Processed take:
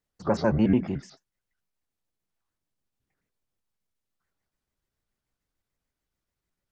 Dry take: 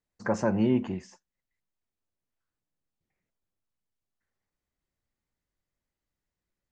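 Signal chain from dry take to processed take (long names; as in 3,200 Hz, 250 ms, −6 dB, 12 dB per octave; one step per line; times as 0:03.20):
pitch shifter gated in a rhythm −5 semitones, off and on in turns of 73 ms
level +3 dB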